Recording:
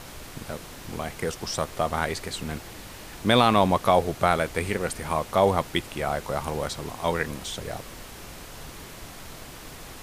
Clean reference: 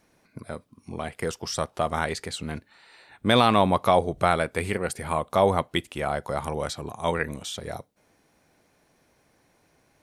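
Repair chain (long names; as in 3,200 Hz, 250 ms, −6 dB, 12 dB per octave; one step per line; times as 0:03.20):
noise reduction from a noise print 23 dB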